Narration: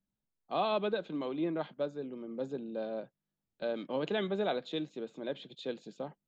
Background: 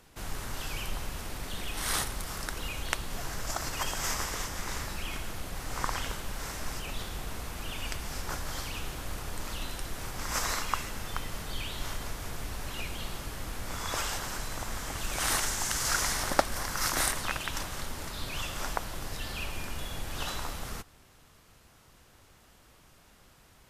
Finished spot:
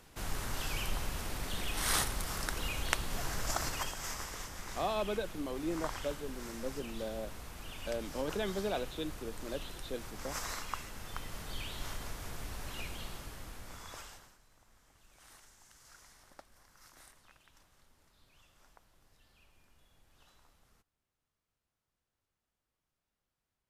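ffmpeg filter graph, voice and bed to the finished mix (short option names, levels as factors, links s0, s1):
-filter_complex "[0:a]adelay=4250,volume=0.708[s0];[1:a]volume=1.41,afade=t=out:st=3.62:d=0.33:silence=0.398107,afade=t=in:st=10.92:d=0.62:silence=0.668344,afade=t=out:st=12.86:d=1.51:silence=0.0562341[s1];[s0][s1]amix=inputs=2:normalize=0"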